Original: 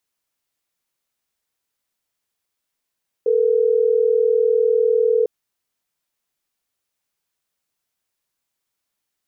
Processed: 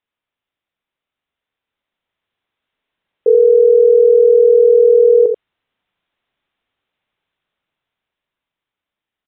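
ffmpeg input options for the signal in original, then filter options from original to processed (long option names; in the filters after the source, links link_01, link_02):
-f lavfi -i "aevalsrc='0.15*(sin(2*PI*440*t)+sin(2*PI*480*t))*clip(min(mod(t,6),2-mod(t,6))/0.005,0,1)':duration=3.12:sample_rate=44100"
-filter_complex "[0:a]asplit=2[link_01][link_02];[link_02]aecho=0:1:85:0.447[link_03];[link_01][link_03]amix=inputs=2:normalize=0,aresample=8000,aresample=44100,dynaudnorm=framelen=400:gausssize=11:maxgain=10.5dB"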